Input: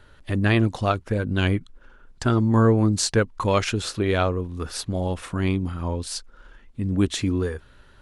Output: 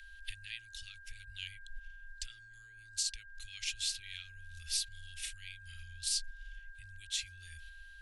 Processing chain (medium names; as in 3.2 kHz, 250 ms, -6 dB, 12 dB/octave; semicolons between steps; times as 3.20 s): gate -44 dBFS, range -6 dB; compression 10:1, threshold -30 dBFS, peak gain reduction 17 dB; whistle 1.6 kHz -36 dBFS; peak limiter -25 dBFS, peak gain reduction 8 dB; inverse Chebyshev band-stop 130–1100 Hz, stop band 50 dB; trim +4 dB